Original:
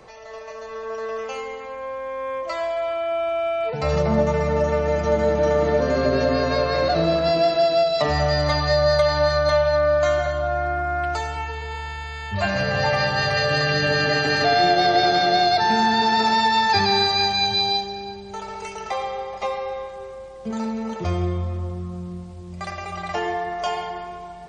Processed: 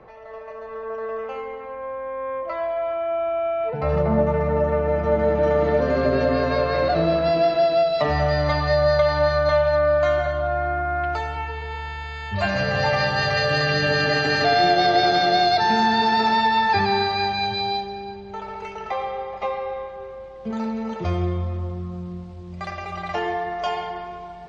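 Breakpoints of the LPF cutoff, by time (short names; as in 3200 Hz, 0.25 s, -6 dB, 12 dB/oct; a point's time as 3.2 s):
4.92 s 1800 Hz
5.7 s 3400 Hz
11.49 s 3400 Hz
12.5 s 6100 Hz
15.66 s 6100 Hz
16.81 s 2800 Hz
19.96 s 2800 Hz
20.85 s 4500 Hz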